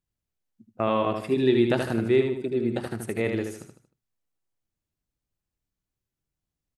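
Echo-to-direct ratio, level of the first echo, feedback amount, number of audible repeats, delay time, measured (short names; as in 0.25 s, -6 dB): -5.0 dB, -5.5 dB, 37%, 4, 77 ms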